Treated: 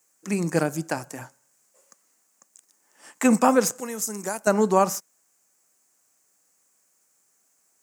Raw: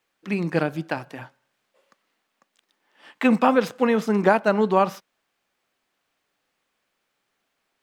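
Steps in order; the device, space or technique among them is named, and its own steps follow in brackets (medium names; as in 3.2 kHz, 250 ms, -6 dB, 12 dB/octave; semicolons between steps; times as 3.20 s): 3.80–4.47 s: pre-emphasis filter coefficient 0.8; budget condenser microphone (high-pass 71 Hz; resonant high shelf 5 kHz +13.5 dB, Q 3)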